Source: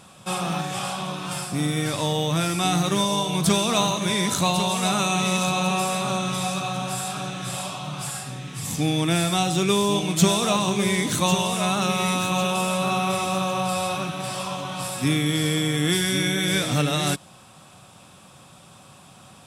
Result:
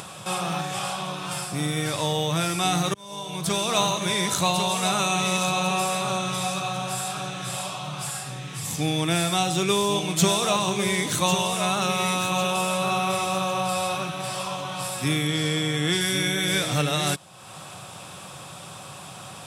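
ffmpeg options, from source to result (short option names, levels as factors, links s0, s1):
-filter_complex "[0:a]asettb=1/sr,asplit=3[s0][s1][s2];[s0]atrim=end=15.274[s3];[s1]atrim=start=15.27:end=16.01,asetpts=PTS-STARTPTS,afade=t=in:d=0.004:c=qsin,afade=t=out:st=0.736:d=0.004:c=qsin,acrossover=split=8600[s4][s5];[s5]acompressor=threshold=0.00398:ratio=4:attack=1:release=60[s6];[s4][s6]amix=inputs=2:normalize=0[s7];[s2]atrim=start=16.006[s8];[s3][s7]acrossfade=d=0.004:c1=hsin:c2=qsin[s9];[s9][s8]acrossfade=d=0.004:c1=qsin:c2=hsin,asplit=2[s10][s11];[s10]atrim=end=2.94,asetpts=PTS-STARTPTS,afade=t=out:st=2.936:d=0.004:c=hsin[s12];[s11]atrim=start=2.94,asetpts=PTS-STARTPTS,afade=t=in:d=0.85[s13];[s12][s13]concat=n=2:v=0:a=1,highpass=97,equalizer=f=240:w=2.4:g=-8.5,acompressor=mode=upward:threshold=0.0316:ratio=2.5"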